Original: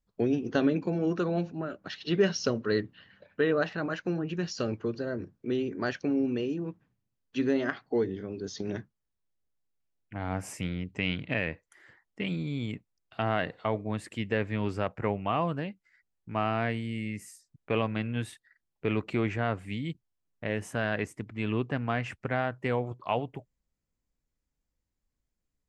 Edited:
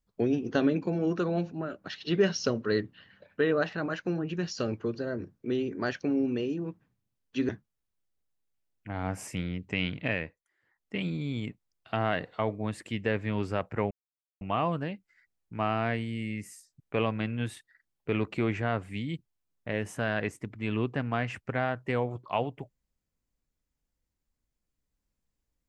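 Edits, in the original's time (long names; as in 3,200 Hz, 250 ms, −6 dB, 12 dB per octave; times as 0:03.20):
0:07.49–0:08.75: remove
0:11.40–0:12.21: duck −19.5 dB, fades 0.31 s
0:15.17: splice in silence 0.50 s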